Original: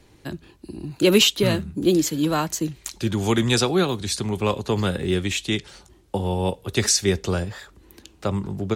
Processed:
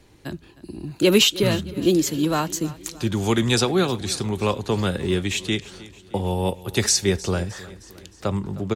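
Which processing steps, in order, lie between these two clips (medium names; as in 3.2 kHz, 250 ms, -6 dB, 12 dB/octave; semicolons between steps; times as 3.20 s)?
6.27–6.84 s: peaking EQ 12 kHz +10 dB 0.45 oct; feedback delay 310 ms, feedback 54%, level -19 dB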